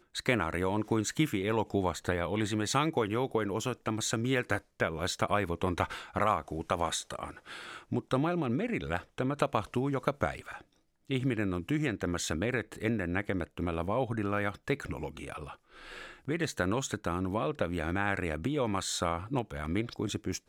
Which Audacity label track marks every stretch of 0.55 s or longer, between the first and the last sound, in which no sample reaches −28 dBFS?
7.240000	7.930000	silence
10.390000	11.110000	silence
15.320000	16.290000	silence